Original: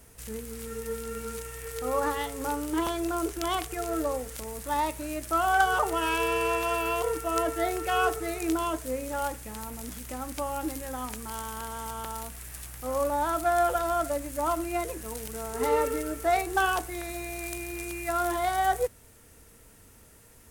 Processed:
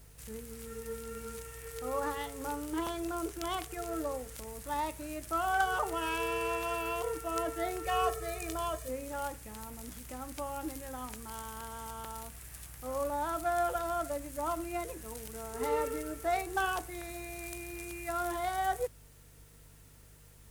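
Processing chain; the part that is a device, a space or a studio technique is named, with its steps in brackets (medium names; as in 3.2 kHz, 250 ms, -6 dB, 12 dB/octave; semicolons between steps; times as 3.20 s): video cassette with head-switching buzz (mains buzz 50 Hz, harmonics 3, -52 dBFS; white noise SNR 30 dB); 7.85–8.89 s: comb 1.7 ms, depth 71%; trim -6.5 dB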